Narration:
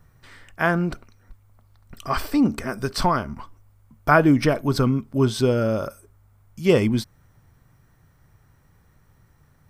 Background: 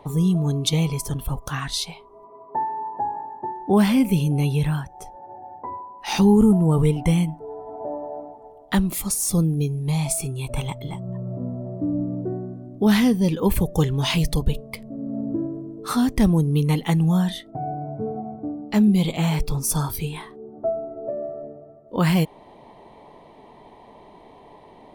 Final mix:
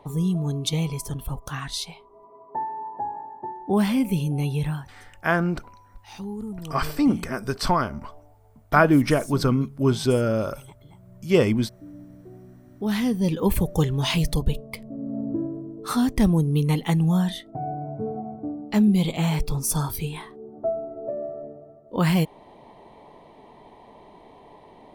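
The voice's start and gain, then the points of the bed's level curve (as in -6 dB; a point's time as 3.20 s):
4.65 s, -1.0 dB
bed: 4.70 s -4 dB
5.16 s -18.5 dB
12.22 s -18.5 dB
13.32 s -1.5 dB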